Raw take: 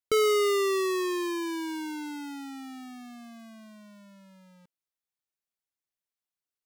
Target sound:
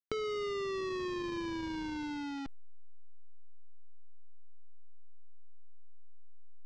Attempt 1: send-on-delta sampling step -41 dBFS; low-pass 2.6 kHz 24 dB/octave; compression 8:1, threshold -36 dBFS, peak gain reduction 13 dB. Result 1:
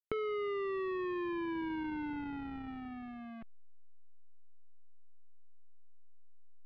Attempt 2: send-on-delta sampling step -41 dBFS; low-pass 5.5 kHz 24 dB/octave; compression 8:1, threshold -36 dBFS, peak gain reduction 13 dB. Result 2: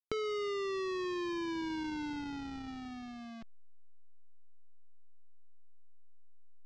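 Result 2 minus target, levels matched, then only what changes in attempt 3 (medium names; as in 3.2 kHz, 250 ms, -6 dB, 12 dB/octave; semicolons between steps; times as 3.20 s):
send-on-delta sampling: distortion -9 dB
change: send-on-delta sampling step -33.5 dBFS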